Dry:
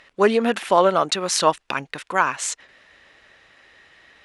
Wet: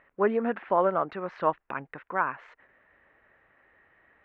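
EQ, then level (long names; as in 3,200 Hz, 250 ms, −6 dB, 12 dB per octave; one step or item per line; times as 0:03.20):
low-pass filter 1,900 Hz 24 dB per octave
−7.5 dB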